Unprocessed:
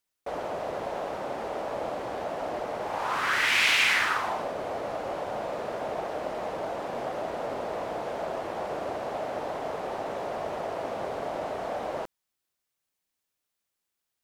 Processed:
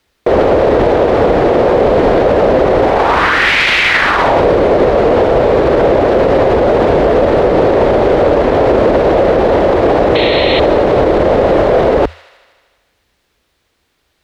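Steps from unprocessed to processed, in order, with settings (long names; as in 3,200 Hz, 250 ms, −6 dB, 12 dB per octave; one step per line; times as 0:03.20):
sound drawn into the spectrogram noise, 0:10.15–0:10.60, 1,900–4,400 Hz −36 dBFS
octave-band graphic EQ 250/500/2,000/4,000 Hz −5/+4/+5/+7 dB
frequency shifter −83 Hz
in parallel at +1 dB: compressor whose output falls as the input rises −29 dBFS
on the sum: high-pass filter 41 Hz
spectral tilt −3.5 dB per octave
on a send: delay with a high-pass on its return 78 ms, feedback 73%, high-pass 2,200 Hz, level −16.5 dB
on the sum: boost into a limiter +16.5 dB
level −1 dB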